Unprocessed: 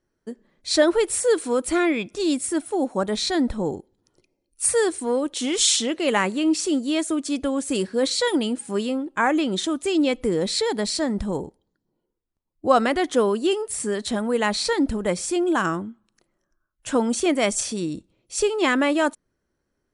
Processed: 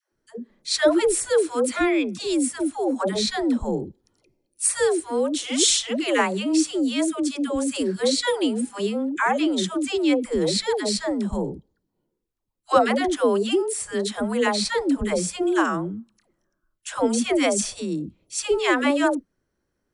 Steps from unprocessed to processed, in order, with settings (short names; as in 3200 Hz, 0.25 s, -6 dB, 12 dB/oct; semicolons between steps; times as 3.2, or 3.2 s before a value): dispersion lows, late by 0.124 s, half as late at 510 Hz